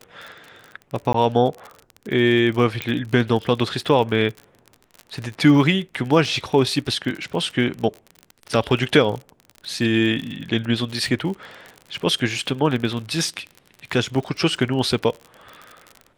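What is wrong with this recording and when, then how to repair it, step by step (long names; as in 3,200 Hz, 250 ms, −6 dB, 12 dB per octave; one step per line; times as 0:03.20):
surface crackle 47 per second −28 dBFS
0:01.13–0:01.14: drop-out 14 ms
0:02.82: click −9 dBFS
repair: click removal
repair the gap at 0:01.13, 14 ms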